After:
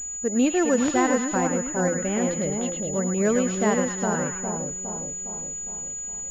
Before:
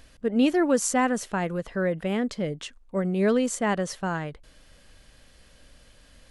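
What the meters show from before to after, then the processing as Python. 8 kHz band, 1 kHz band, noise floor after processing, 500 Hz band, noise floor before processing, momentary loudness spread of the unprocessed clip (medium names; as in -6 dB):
+10.5 dB, +2.0 dB, -33 dBFS, +2.0 dB, -56 dBFS, 10 LU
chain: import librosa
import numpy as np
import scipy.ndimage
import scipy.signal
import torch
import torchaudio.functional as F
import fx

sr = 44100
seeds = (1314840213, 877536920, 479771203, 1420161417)

y = fx.wow_flutter(x, sr, seeds[0], rate_hz=2.1, depth_cents=24.0)
y = fx.echo_split(y, sr, split_hz=1000.0, low_ms=410, high_ms=107, feedback_pct=52, wet_db=-3.5)
y = fx.pwm(y, sr, carrier_hz=6900.0)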